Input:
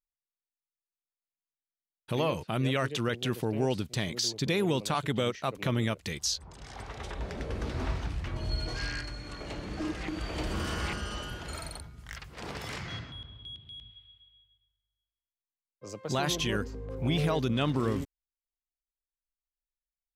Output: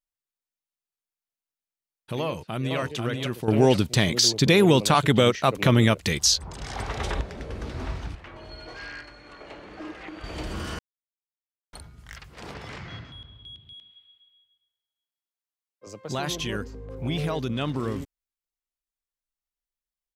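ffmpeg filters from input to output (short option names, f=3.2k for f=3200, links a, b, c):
-filter_complex "[0:a]asplit=2[a][b];[b]afade=t=in:st=2.21:d=0.01,afade=t=out:st=2.78:d=0.01,aecho=0:1:490|980|1470:0.630957|0.126191|0.0252383[c];[a][c]amix=inputs=2:normalize=0,asettb=1/sr,asplit=3[d][e][f];[d]atrim=end=8.154[g];[e]atrim=start=8.15:end=10.24,asetpts=PTS-STARTPTS,afade=t=in:d=0.004:c=qsin,afade=t=out:st=2.086:d=0.004:c=qsin,bass=f=250:g=-14,treble=f=4k:g=-12[h];[f]atrim=start=10.236[i];[g][h]acrossfade=d=0.004:c1=hsin:c2=qsin[j];[j][i]acrossfade=d=0.004:c1=qsin:c2=hsin,asettb=1/sr,asplit=3[k][l][m];[k]atrim=end=12.544[n];[l]atrim=start=12.54:end=13.05,asetpts=PTS-STARTPTS,afade=t=in:d=0.004:c=qsin,afade=t=out:st=0.506:d=0.004:c=qsin,aemphasis=mode=reproduction:type=50fm[o];[m]atrim=start=13.046[p];[n][o]acrossfade=d=0.004:c1=hsin:c2=qsin[q];[q][p]acrossfade=d=0.004:c1=qsin:c2=hsin,asettb=1/sr,asplit=3[r][s][t];[r]atrim=end=13.734[u];[s]atrim=start=13.73:end=15.87,asetpts=PTS-STARTPTS,afade=t=in:d=0.004:c=qsin,afade=t=out:st=2.136:d=0.004:c=qsin,highpass=290[v];[t]atrim=start=15.866[w];[u][v]acrossfade=d=0.004:c1=hsin:c2=qsin[x];[x][w]acrossfade=d=0.004:c1=qsin:c2=hsin,asplit=5[y][z][aa][ab][ac];[y]atrim=end=3.482[ad];[z]atrim=start=3.478:end=7.212,asetpts=PTS-STARTPTS,volume=10.5dB[ae];[aa]atrim=start=7.208:end=10.79,asetpts=PTS-STARTPTS,afade=t=out:st=3.578:d=0.004:c=hsin[af];[ab]atrim=start=10.79:end=11.73,asetpts=PTS-STARTPTS,volume=0[ag];[ac]atrim=start=11.73,asetpts=PTS-STARTPTS,afade=t=in:d=0.004:c=hsin[ah];[ad][ae]acrossfade=d=0.004:c1=hsin:c2=hsin[ai];[af][ag][ah]concat=n=3:v=0:a=1[aj];[ai][aj]acrossfade=d=0.004:c1=hsin:c2=hsin"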